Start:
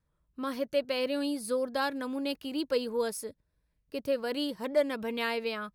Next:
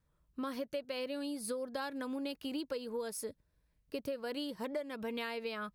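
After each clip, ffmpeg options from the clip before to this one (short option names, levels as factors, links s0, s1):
-af "acompressor=threshold=0.0158:ratio=12,volume=1.12"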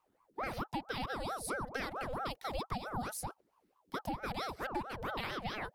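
-af "aeval=exprs='val(0)*sin(2*PI*660*n/s+660*0.65/4.5*sin(2*PI*4.5*n/s))':c=same,volume=1.41"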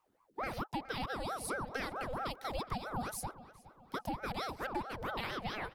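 -filter_complex "[0:a]asplit=2[s0][s1];[s1]adelay=417,lowpass=f=3600:p=1,volume=0.15,asplit=2[s2][s3];[s3]adelay=417,lowpass=f=3600:p=1,volume=0.44,asplit=2[s4][s5];[s5]adelay=417,lowpass=f=3600:p=1,volume=0.44,asplit=2[s6][s7];[s7]adelay=417,lowpass=f=3600:p=1,volume=0.44[s8];[s0][s2][s4][s6][s8]amix=inputs=5:normalize=0"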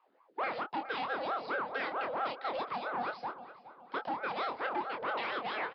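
-filter_complex "[0:a]aresample=11025,asoftclip=type=tanh:threshold=0.0224,aresample=44100,highpass=400,lowpass=3200,asplit=2[s0][s1];[s1]adelay=25,volume=0.473[s2];[s0][s2]amix=inputs=2:normalize=0,volume=2.11"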